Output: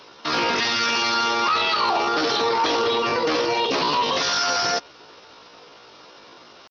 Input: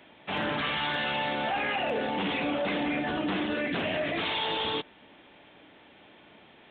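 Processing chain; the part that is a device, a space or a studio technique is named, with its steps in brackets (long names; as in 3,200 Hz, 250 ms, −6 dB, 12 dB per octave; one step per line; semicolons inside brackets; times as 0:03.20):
chipmunk voice (pitch shifter +8 semitones)
parametric band 1,100 Hz +2 dB
level +8 dB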